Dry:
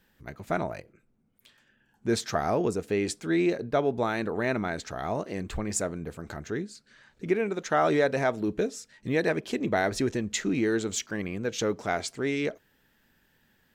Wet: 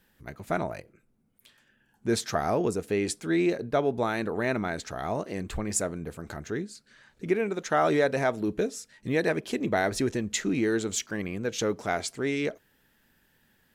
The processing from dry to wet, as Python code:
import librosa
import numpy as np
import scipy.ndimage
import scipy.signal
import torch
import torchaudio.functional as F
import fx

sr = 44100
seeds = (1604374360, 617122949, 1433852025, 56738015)

y = fx.peak_eq(x, sr, hz=11000.0, db=7.0, octaves=0.55)